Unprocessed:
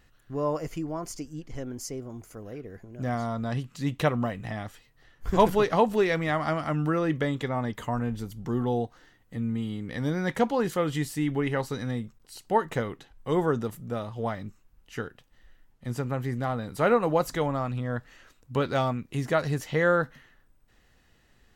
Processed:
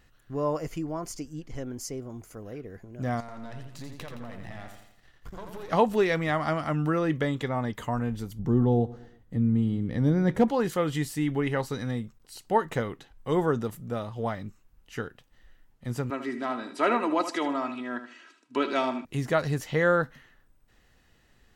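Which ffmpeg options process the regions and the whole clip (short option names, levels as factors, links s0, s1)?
-filter_complex "[0:a]asettb=1/sr,asplit=3[s0][s1][s2];[s0]atrim=end=3.204[s3];[s1]atrim=start=3.2:end=5.69,asetpts=PTS-STARTPTS,afade=t=in:d=0.004:c=qsin,afade=t=out:st=2.486:d=0.004:c=qsin,aeval=exprs='if(lt(val(0),0),0.251*val(0),val(0))':c=same,acompressor=threshold=0.0158:ratio=12:attack=3.2:release=140:knee=1:detection=peak,aecho=1:1:84|168|252|336|420|504:0.501|0.236|0.111|0.052|0.0245|0.0115,atrim=end_sample=109809[s4];[s2]atrim=start=5.686[s5];[s3][s4]acrossfade=d=0.004:c1=hsin:c2=qsin[s6];[s6][s5]acrossfade=d=0.004:c1=qsin:c2=hsin,asettb=1/sr,asplit=3[s7][s8][s9];[s7]atrim=end=8.394[s10];[s8]atrim=start=8.39:end=10.5,asetpts=PTS-STARTPTS,afade=t=in:d=0.004:c=qsin,afade=t=out:st=2.106:d=0.004:c=qsin,tiltshelf=f=660:g=7,aecho=1:1:115|230|345:0.1|0.043|0.0185,atrim=end_sample=93051,asoftclip=type=hard:threshold=0.266[s11];[s9]atrim=start=10.496[s12];[s10][s11]acrossfade=d=0.004:c1=hsin:c2=qsin[s13];[s13][s12]acrossfade=d=0.004:c1=qsin:c2=hsin,asettb=1/sr,asplit=3[s14][s15][s16];[s14]atrim=end=16.104[s17];[s15]atrim=start=16.1:end=19.05,asetpts=PTS-STARTPTS,afade=t=in:d=0.004:c=qsin,afade=t=out:st=2.946:d=0.004:c=qsin,highpass=f=240:w=0.5412,highpass=f=240:w=1.3066,equalizer=f=600:t=q:w=4:g=-7,equalizer=f=2500:t=q:w=4:g=4,equalizer=f=6800:t=q:w=4:g=-4,lowpass=f=8600:w=0.5412,lowpass=f=8600:w=1.3066,aecho=1:1:3.1:0.7,atrim=end_sample=130095,aecho=1:1:77|154|231:0.299|0.0896|0.0269,atrim=end_sample=130095[s18];[s16]atrim=start=19.046[s19];[s17][s18]acrossfade=d=0.004:c1=hsin:c2=qsin[s20];[s20][s19]acrossfade=d=0.004:c1=qsin:c2=hsin"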